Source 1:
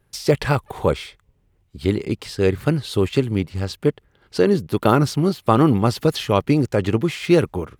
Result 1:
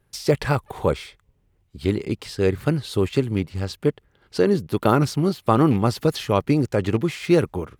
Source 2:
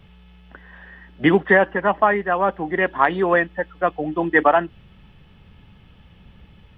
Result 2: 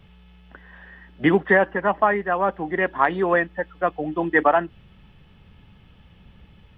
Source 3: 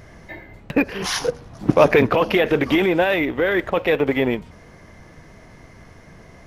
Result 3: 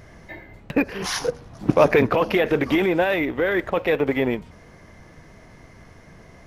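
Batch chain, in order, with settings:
loose part that buzzes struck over −14 dBFS, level −24 dBFS
dynamic equaliser 3,100 Hz, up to −3 dB, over −37 dBFS
level −2 dB

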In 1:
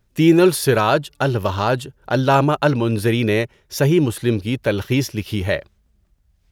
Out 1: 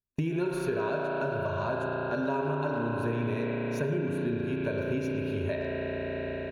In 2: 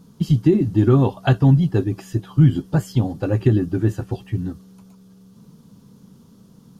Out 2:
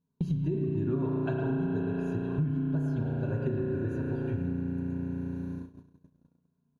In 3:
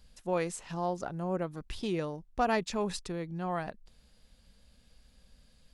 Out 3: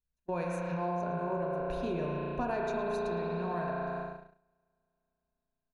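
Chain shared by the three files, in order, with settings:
EQ curve with evenly spaced ripples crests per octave 1.5, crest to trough 11 dB
far-end echo of a speakerphone 110 ms, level −7 dB
spring reverb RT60 3.8 s, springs 34 ms, chirp 30 ms, DRR −2 dB
noise gate −34 dBFS, range −31 dB
downward compressor 5 to 1, threshold −27 dBFS
high-shelf EQ 2,600 Hz −11.5 dB
tuned comb filter 470 Hz, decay 0.21 s, harmonics all, mix 60%
level +5.5 dB

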